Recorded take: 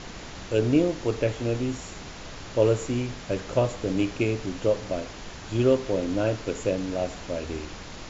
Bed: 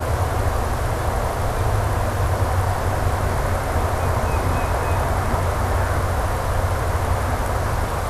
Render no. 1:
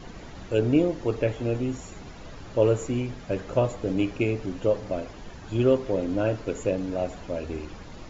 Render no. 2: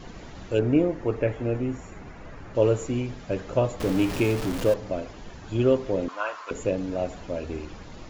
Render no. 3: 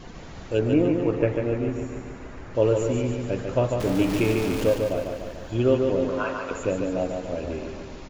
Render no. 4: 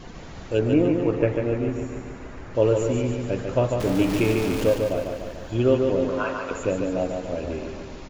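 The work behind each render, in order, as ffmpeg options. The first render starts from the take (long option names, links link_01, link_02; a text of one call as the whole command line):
ffmpeg -i in.wav -af "afftdn=noise_reduction=10:noise_floor=-41" out.wav
ffmpeg -i in.wav -filter_complex "[0:a]asettb=1/sr,asplit=3[link_01][link_02][link_03];[link_01]atrim=end=0.594[link_04];[link_02]atrim=start=0.59:end=2.55,asetpts=PTS-STARTPTS,afade=type=in:duration=0.004:curve=qsin,afade=type=out:start_time=1.956:duration=0.004:curve=qsin,highshelf=frequency=2700:width_type=q:width=1.5:gain=-7[link_05];[link_03]atrim=start=2.546[link_06];[link_04][link_05]acrossfade=duration=0.004:curve1=hsin:curve2=qsin[link_07];[link_07][link_06]acrossfade=duration=0.004:curve1=qsin:curve2=hsin,asettb=1/sr,asplit=3[link_08][link_09][link_10];[link_08]atrim=end=3.804[link_11];[link_09]atrim=start=3.8:end=4.74,asetpts=PTS-STARTPTS,afade=type=in:duration=0.004:curve=qsin,afade=type=out:start_time=0.936:duration=0.004:curve=qsin,aeval=exprs='val(0)+0.5*0.0422*sgn(val(0))':channel_layout=same[link_12];[link_10]atrim=start=4.736[link_13];[link_11][link_12]acrossfade=duration=0.004:curve1=hsin:curve2=qsin[link_14];[link_14][link_13]acrossfade=duration=0.004:curve1=qsin:curve2=hsin,asettb=1/sr,asplit=3[link_15][link_16][link_17];[link_15]atrim=end=6.084[link_18];[link_16]atrim=start=6.08:end=6.51,asetpts=PTS-STARTPTS,afade=type=in:duration=0.004:curve=qsin,afade=type=out:start_time=0.426:duration=0.004:curve=qsin,highpass=frequency=1100:width_type=q:width=5.8[link_19];[link_17]atrim=start=6.506[link_20];[link_18][link_19]acrossfade=duration=0.004:curve1=hsin:curve2=qsin[link_21];[link_21][link_20]acrossfade=duration=0.004:curve1=qsin:curve2=hsin" out.wav
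ffmpeg -i in.wav -af "aecho=1:1:146|292|438|584|730|876|1022|1168:0.562|0.326|0.189|0.11|0.0636|0.0369|0.0214|0.0124" out.wav
ffmpeg -i in.wav -af "volume=1dB" out.wav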